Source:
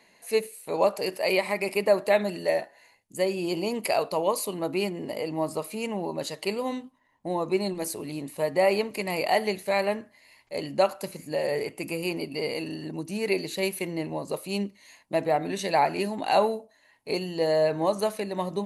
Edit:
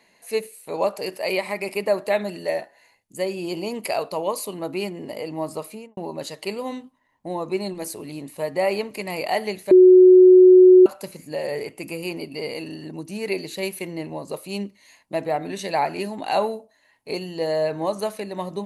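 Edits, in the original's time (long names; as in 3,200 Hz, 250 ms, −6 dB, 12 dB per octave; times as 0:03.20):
0:05.65–0:05.97: fade out and dull
0:09.71–0:10.86: beep over 368 Hz −6.5 dBFS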